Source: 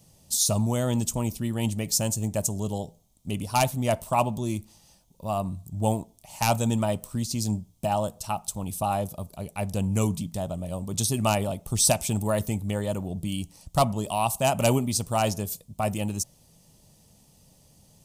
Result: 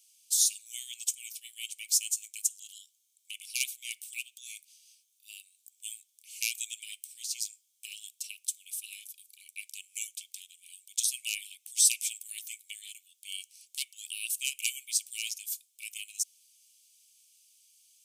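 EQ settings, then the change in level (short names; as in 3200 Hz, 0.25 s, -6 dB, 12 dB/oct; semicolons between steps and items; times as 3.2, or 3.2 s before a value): rippled Chebyshev high-pass 2200 Hz, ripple 3 dB; 0.0 dB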